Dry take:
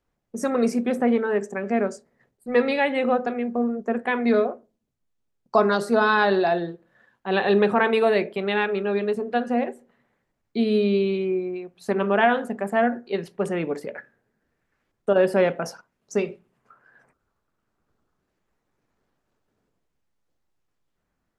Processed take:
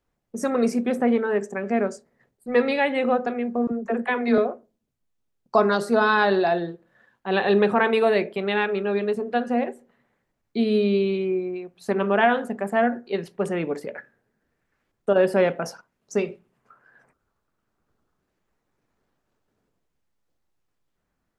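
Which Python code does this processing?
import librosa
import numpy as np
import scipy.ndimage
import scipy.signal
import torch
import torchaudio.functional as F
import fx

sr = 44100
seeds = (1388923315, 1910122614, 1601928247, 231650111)

y = fx.dispersion(x, sr, late='lows', ms=51.0, hz=330.0, at=(3.67, 4.38))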